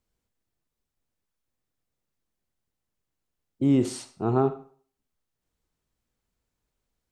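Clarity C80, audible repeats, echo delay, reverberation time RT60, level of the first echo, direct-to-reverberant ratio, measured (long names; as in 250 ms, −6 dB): 17.0 dB, no echo audible, no echo audible, 0.45 s, no echo audible, 11.0 dB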